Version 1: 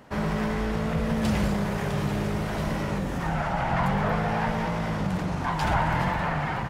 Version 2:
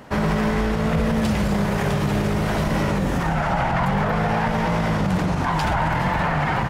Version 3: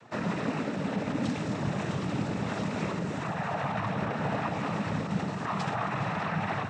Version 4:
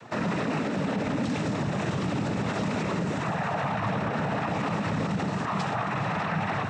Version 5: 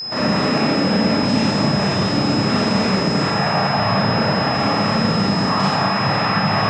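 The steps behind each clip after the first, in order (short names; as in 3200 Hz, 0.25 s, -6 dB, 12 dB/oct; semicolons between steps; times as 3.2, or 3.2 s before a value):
limiter -20.5 dBFS, peak gain reduction 8 dB; gain +8 dB
noise vocoder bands 12; gain -9 dB
limiter -27 dBFS, peak gain reduction 9 dB; gain +7 dB
Schroeder reverb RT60 0.97 s, combs from 28 ms, DRR -6.5 dB; whine 5100 Hz -28 dBFS; gain +3 dB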